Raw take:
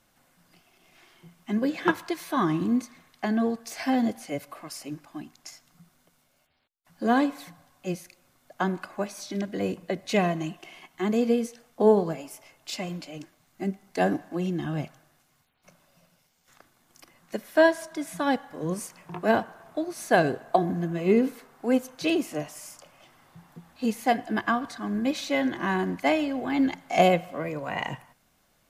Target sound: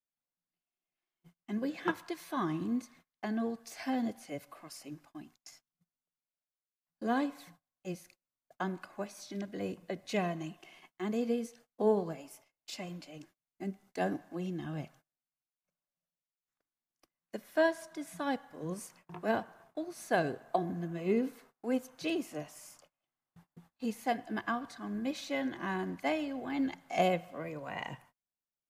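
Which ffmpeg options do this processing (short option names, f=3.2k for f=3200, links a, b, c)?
-af "agate=range=-28dB:threshold=-49dB:ratio=16:detection=peak,volume=-9dB"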